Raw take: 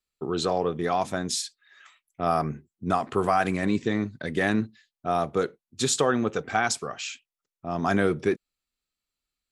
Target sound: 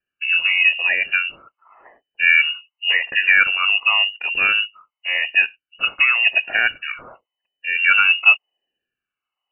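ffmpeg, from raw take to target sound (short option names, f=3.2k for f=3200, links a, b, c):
-af "afftfilt=real='re*pow(10,20/40*sin(2*PI*(0.87*log(max(b,1)*sr/1024/100)/log(2)-(0.9)*(pts-256)/sr)))':imag='im*pow(10,20/40*sin(2*PI*(0.87*log(max(b,1)*sr/1024/100)/log(2)-(0.9)*(pts-256)/sr)))':win_size=1024:overlap=0.75,lowpass=f=2.6k:t=q:w=0.5098,lowpass=f=2.6k:t=q:w=0.6013,lowpass=f=2.6k:t=q:w=0.9,lowpass=f=2.6k:t=q:w=2.563,afreqshift=-3000,volume=4dB"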